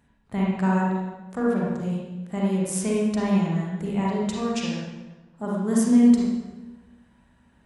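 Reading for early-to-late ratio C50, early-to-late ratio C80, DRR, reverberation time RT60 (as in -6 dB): -2.5 dB, 1.5 dB, -4.5 dB, 1.2 s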